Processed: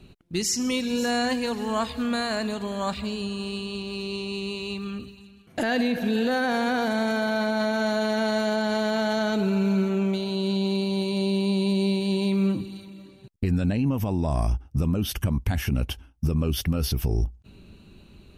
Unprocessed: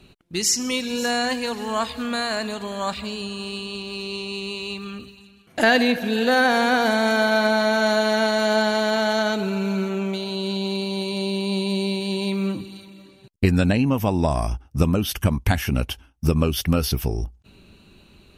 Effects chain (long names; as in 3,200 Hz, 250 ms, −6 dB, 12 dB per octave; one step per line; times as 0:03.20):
low-shelf EQ 400 Hz +7.5 dB
brickwall limiter −12 dBFS, peak gain reduction 11.5 dB
level −4 dB